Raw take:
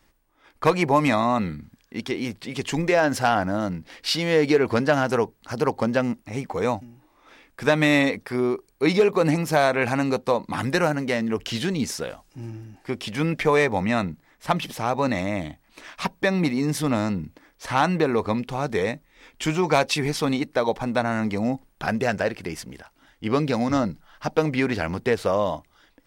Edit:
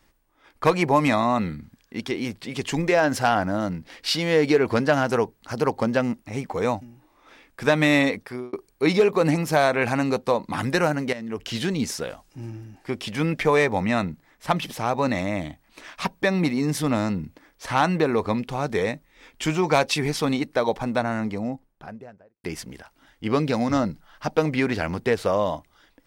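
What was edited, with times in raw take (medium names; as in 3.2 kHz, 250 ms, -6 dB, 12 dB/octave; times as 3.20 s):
8.15–8.53 s: fade out linear
11.13–11.62 s: fade in, from -13 dB
20.73–22.44 s: studio fade out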